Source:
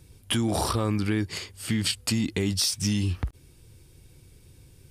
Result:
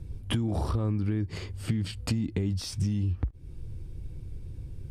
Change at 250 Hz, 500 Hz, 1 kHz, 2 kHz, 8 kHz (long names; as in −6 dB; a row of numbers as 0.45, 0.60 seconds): −4.0, −6.0, −8.5, −9.5, −14.0 decibels